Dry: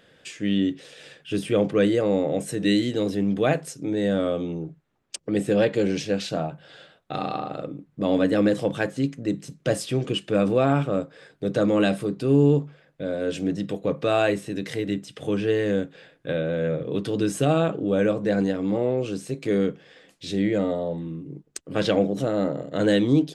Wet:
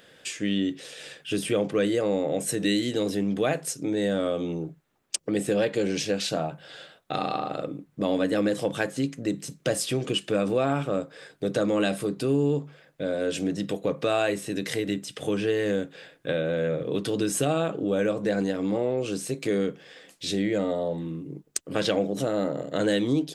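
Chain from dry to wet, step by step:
low-shelf EQ 200 Hz −6 dB
downward compressor 2 to 1, threshold −27 dBFS, peak gain reduction 6.5 dB
high-shelf EQ 6,700 Hz +8.5 dB
level +2.5 dB

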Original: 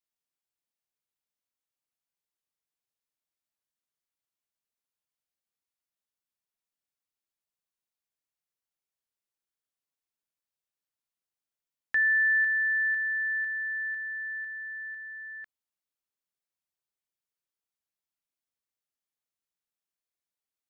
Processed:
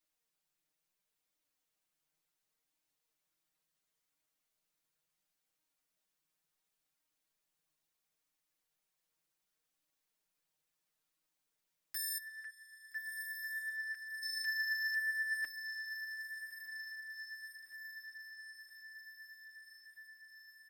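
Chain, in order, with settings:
comb filter 6.4 ms, depth 76%
downward compressor 16 to 1, threshold −25 dBFS, peak gain reduction 5.5 dB
wave folding −37.5 dBFS
0:12.18–0:14.23: resonant band-pass 1,700 Hz, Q 3.5
flanger 0.71 Hz, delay 3.1 ms, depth 3.5 ms, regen +49%
feedback delay with all-pass diffusion 1,310 ms, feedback 66%, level −8.5 dB
convolution reverb RT60 0.50 s, pre-delay 7 ms, DRR 15.5 dB
level +7.5 dB

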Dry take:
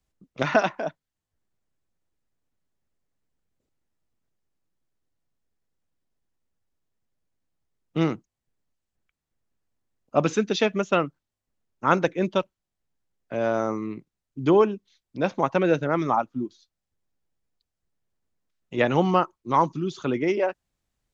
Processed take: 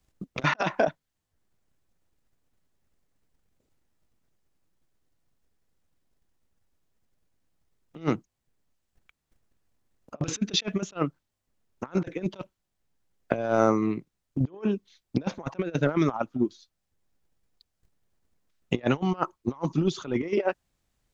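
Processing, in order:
transient designer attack +11 dB, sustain −1 dB
compressor whose output falls as the input rises −25 dBFS, ratio −0.5
level −2 dB

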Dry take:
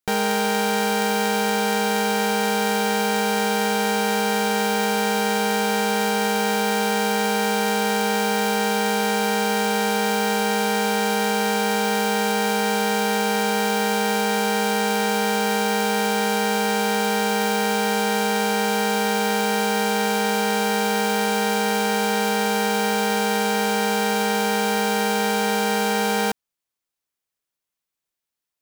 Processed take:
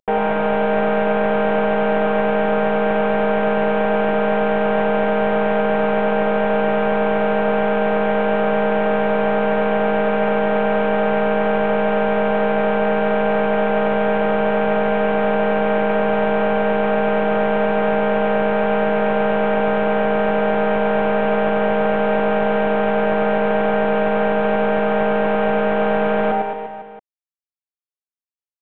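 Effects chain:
variable-slope delta modulation 16 kbit/s
parametric band 610 Hz +12.5 dB 0.96 octaves
on a send: reverse bouncing-ball delay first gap 100 ms, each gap 1.15×, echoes 5

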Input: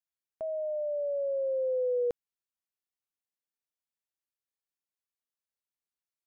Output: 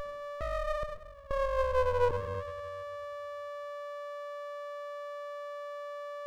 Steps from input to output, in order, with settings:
steady tone 580 Hz −36 dBFS
0:00.83–0:01.31: first difference
in parallel at −3 dB: brickwall limiter −29.5 dBFS, peak gain reduction 6.5 dB
on the sum: high-pass filter 84 Hz 12 dB per octave
on a send at −5 dB: convolution reverb, pre-delay 46 ms
on the sum: windowed peak hold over 33 samples

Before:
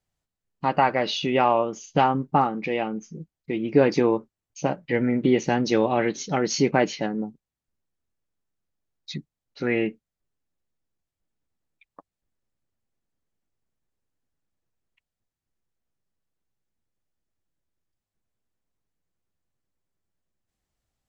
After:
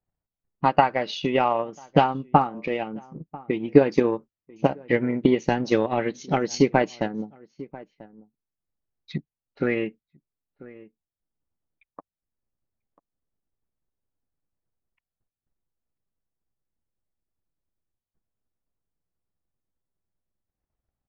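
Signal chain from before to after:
low-pass that shuts in the quiet parts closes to 1,400 Hz, open at −19.5 dBFS
slap from a distant wall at 170 metres, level −19 dB
transient designer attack +9 dB, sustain −5 dB
level −3.5 dB

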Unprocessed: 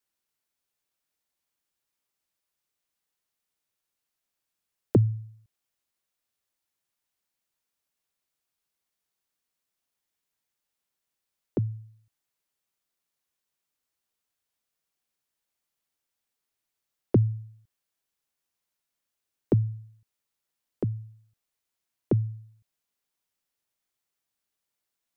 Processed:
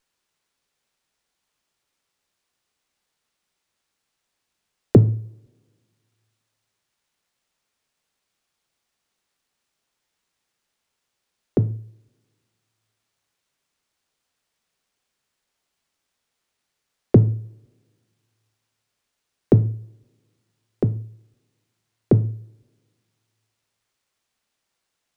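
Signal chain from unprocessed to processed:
coupled-rooms reverb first 0.41 s, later 2 s, from −28 dB, DRR 11.5 dB
windowed peak hold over 3 samples
level +8 dB

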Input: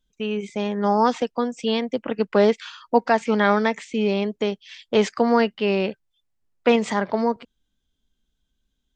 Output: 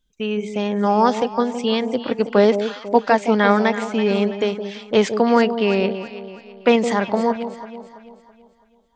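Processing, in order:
delay that swaps between a low-pass and a high-pass 165 ms, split 840 Hz, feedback 64%, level −8.5 dB
level +2.5 dB

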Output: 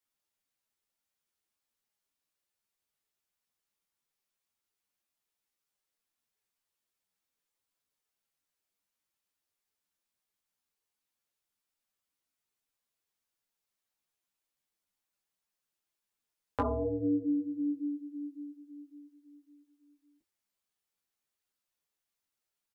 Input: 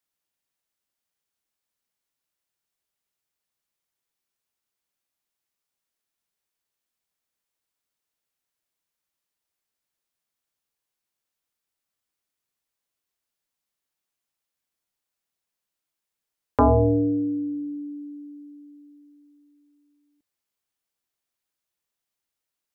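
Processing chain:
downward compressor 4 to 1, threshold −28 dBFS, peak gain reduction 11.5 dB
double-tracking delay 21 ms −10 dB
string-ensemble chorus

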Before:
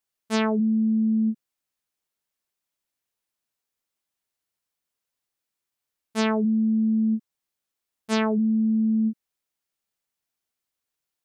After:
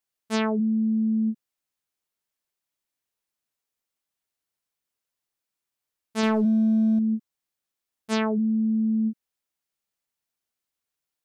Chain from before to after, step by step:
0:06.23–0:06.99: leveller curve on the samples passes 1
level −1.5 dB

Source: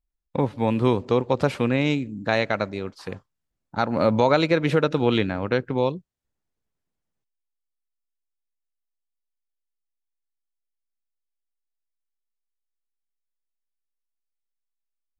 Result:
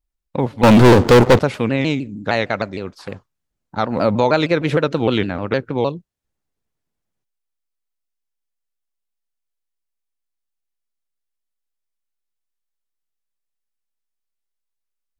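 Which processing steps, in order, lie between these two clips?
0:00.63–0:01.39: leveller curve on the samples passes 5
pitch modulation by a square or saw wave saw down 6.5 Hz, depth 160 cents
level +3 dB

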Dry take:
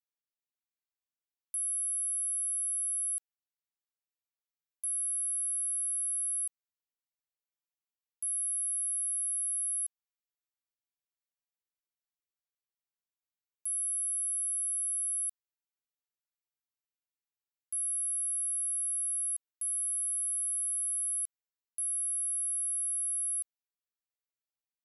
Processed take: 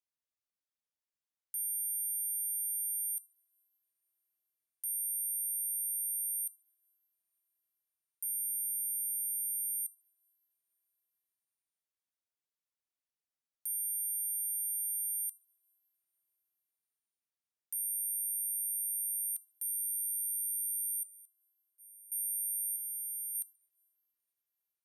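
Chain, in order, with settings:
0:21.03–0:22.12: downward expander −21 dBFS
0:22.76–0:23.35: Bessel low-pass filter 10,000 Hz
ring modulation 1,800 Hz
convolution reverb, pre-delay 3 ms, DRR 19 dB

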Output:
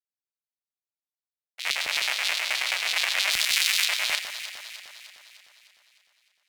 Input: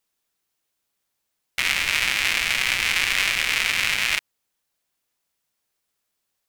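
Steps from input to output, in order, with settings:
auto-filter high-pass square 9.4 Hz 660–4,000 Hz
0:03.31–0:03.85: drawn EQ curve 160 Hz 0 dB, 600 Hz −16 dB, 1,500 Hz −2 dB, 12,000 Hz +9 dB
in parallel at −1.5 dB: brickwall limiter −12 dBFS, peak gain reduction 10 dB
on the sum: frequency shifter −24 Hz
downward expander −10 dBFS
delay that swaps between a low-pass and a high-pass 152 ms, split 1,900 Hz, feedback 74%, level −8 dB

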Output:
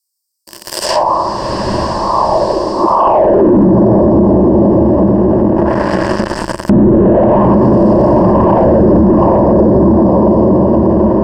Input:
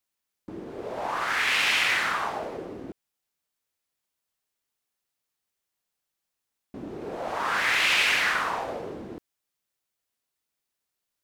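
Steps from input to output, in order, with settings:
source passing by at 0:04.49, 7 m/s, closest 5.7 metres
leveller curve on the samples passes 2
in parallel at +1 dB: downward compressor 6 to 1, threshold −44 dBFS, peak gain reduction 15.5 dB
on the sum: inverse Chebyshev band-stop filter 1,500–3,100 Hz, stop band 50 dB
on a send: feedback delay with all-pass diffusion 809 ms, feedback 46%, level −6.5 dB
on the sum: high-pass filter sweep 2,800 Hz → 75 Hz, 0:02.75–0:03.93
hollow resonant body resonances 210/1,100 Hz, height 7 dB, ringing for 25 ms
leveller curve on the samples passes 5
EQ curve with evenly spaced ripples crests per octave 1.3, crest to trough 10 dB
treble cut that deepens with the level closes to 560 Hz, closed at −32.5 dBFS
boost into a limiter +35.5 dB
level −1 dB

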